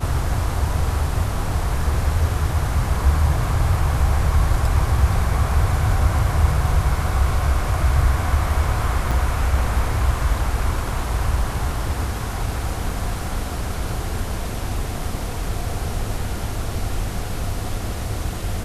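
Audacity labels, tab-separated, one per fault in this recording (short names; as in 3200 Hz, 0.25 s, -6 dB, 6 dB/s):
9.110000	9.120000	gap 5.5 ms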